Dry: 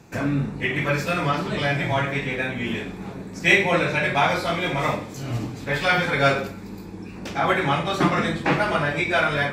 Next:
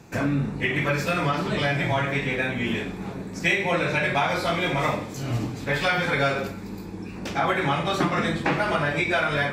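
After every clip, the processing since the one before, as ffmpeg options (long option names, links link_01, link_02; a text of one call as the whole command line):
ffmpeg -i in.wav -af "acompressor=threshold=-20dB:ratio=6,volume=1dB" out.wav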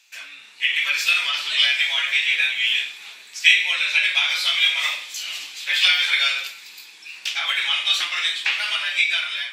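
ffmpeg -i in.wav -af "dynaudnorm=framelen=140:gausssize=9:maxgain=11.5dB,highpass=frequency=3000:width_type=q:width=2.6,volume=-1dB" out.wav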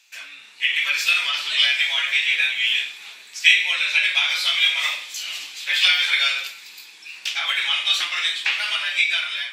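ffmpeg -i in.wav -af anull out.wav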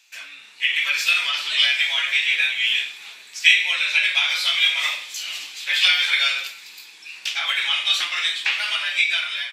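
ffmpeg -i in.wav -af "aresample=32000,aresample=44100" out.wav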